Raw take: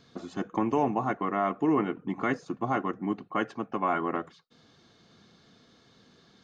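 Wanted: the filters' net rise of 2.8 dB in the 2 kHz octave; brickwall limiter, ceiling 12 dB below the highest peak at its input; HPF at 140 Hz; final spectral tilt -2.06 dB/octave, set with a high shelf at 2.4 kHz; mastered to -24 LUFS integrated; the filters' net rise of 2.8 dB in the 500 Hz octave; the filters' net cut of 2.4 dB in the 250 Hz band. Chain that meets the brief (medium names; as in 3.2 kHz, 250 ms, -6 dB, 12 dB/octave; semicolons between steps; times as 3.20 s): high-pass 140 Hz; peaking EQ 250 Hz -5 dB; peaking EQ 500 Hz +5.5 dB; peaking EQ 2 kHz +7.5 dB; treble shelf 2.4 kHz -9 dB; trim +11 dB; peak limiter -13 dBFS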